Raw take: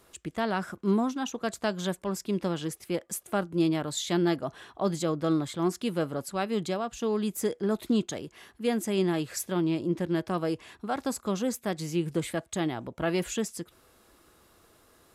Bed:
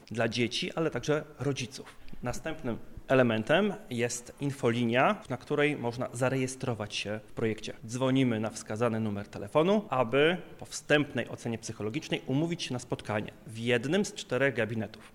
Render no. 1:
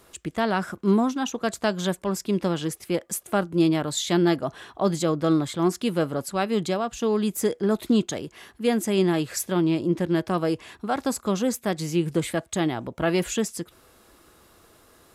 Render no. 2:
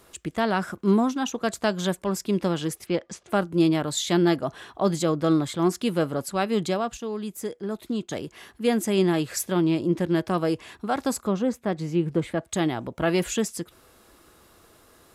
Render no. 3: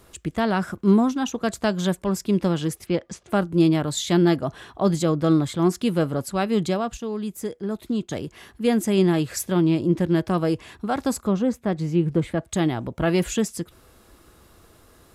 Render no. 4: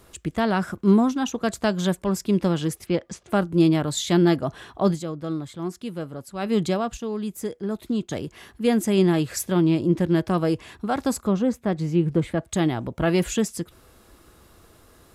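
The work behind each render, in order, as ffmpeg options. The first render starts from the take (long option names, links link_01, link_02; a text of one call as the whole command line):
ffmpeg -i in.wav -af "volume=5dB" out.wav
ffmpeg -i in.wav -filter_complex "[0:a]asplit=3[link_01][link_02][link_03];[link_01]afade=type=out:start_time=2.85:duration=0.02[link_04];[link_02]lowpass=frequency=5700:width=0.5412,lowpass=frequency=5700:width=1.3066,afade=type=in:start_time=2.85:duration=0.02,afade=type=out:start_time=3.29:duration=0.02[link_05];[link_03]afade=type=in:start_time=3.29:duration=0.02[link_06];[link_04][link_05][link_06]amix=inputs=3:normalize=0,asettb=1/sr,asplit=3[link_07][link_08][link_09];[link_07]atrim=end=11.274[link_10];[link_08]atrim=start=11.27:end=12.45,asetpts=PTS-STARTPTS,afade=type=in:duration=0.004:curve=qsin,afade=type=out:start_time=1.176:duration=0.004:curve=qsin,lowpass=frequency=1500:poles=1[link_11];[link_09]atrim=start=12.446[link_12];[link_10][link_11]acrossfade=duration=0.004:curve1=hsin:curve2=qsin[link_13];[link_13][link_12]acrossfade=duration=0.004:curve1=qsin:curve2=hsin,asplit=3[link_14][link_15][link_16];[link_14]atrim=end=6.972[link_17];[link_15]atrim=start=6.968:end=8.112,asetpts=PTS-STARTPTS,volume=-8dB[link_18];[link_16]atrim=start=8.108[link_19];[link_17][link_18]acrossfade=duration=0.004:curve1=hsin:curve2=hsin[link_20];[link_20][link_19]acrossfade=duration=0.004:curve1=hsin:curve2=hsin" out.wav
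ffmpeg -i in.wav -af "lowshelf=frequency=170:gain=9.5" out.wav
ffmpeg -i in.wav -filter_complex "[0:a]asplit=3[link_01][link_02][link_03];[link_01]atrim=end=5.36,asetpts=PTS-STARTPTS,afade=type=out:start_time=4.91:duration=0.45:curve=exp:silence=0.316228[link_04];[link_02]atrim=start=5.36:end=6.01,asetpts=PTS-STARTPTS,volume=-10dB[link_05];[link_03]atrim=start=6.01,asetpts=PTS-STARTPTS,afade=type=in:duration=0.45:curve=exp:silence=0.316228[link_06];[link_04][link_05][link_06]concat=n=3:v=0:a=1" out.wav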